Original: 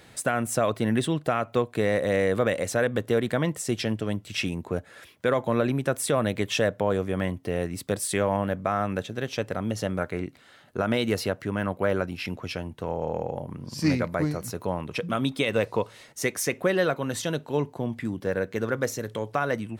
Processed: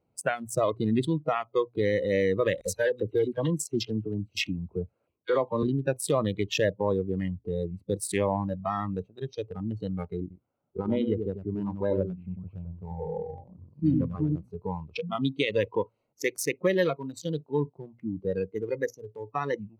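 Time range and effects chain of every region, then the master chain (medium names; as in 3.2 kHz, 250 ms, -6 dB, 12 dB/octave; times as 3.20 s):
2.61–5.63 s: treble shelf 4 kHz +4.5 dB + phase dispersion lows, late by 49 ms, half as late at 1.9 kHz + tape noise reduction on one side only decoder only
10.21–14.36 s: distance through air 490 m + delay 94 ms -4.5 dB
whole clip: local Wiener filter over 25 samples; hum notches 60/120 Hz; spectral noise reduction 20 dB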